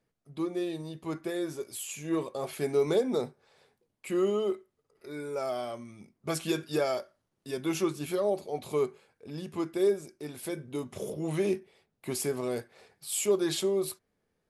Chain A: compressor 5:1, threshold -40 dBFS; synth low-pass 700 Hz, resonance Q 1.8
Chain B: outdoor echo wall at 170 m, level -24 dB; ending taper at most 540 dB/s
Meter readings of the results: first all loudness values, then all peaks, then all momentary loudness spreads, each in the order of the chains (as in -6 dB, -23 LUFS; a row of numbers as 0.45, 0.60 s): -41.5, -32.0 LUFS; -26.5, -16.0 dBFS; 10, 15 LU